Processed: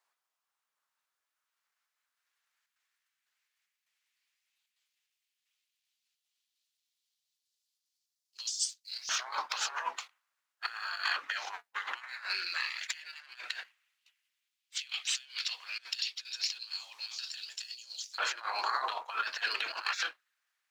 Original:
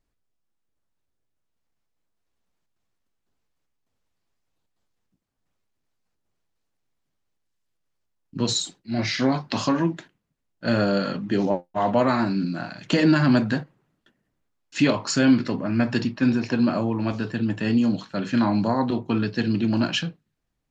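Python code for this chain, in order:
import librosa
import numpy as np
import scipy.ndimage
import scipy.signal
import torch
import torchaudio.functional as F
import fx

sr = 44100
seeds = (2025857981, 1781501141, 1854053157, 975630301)

y = fx.spec_gate(x, sr, threshold_db=-15, keep='weak')
y = fx.low_shelf(y, sr, hz=110.0, db=-6.5)
y = fx.hum_notches(y, sr, base_hz=60, count=4)
y = fx.over_compress(y, sr, threshold_db=-39.0, ratio=-0.5)
y = fx.leveller(y, sr, passes=1)
y = fx.filter_lfo_highpass(y, sr, shape='saw_up', hz=0.11, low_hz=960.0, high_hz=5600.0, q=1.8)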